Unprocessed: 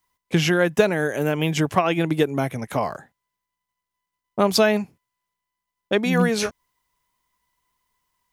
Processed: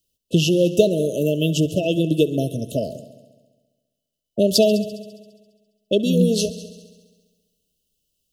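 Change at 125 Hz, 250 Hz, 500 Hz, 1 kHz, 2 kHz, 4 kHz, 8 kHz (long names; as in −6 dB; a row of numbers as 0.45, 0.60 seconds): +2.5 dB, +3.0 dB, +2.5 dB, below −10 dB, −10.5 dB, +2.5 dB, +2.5 dB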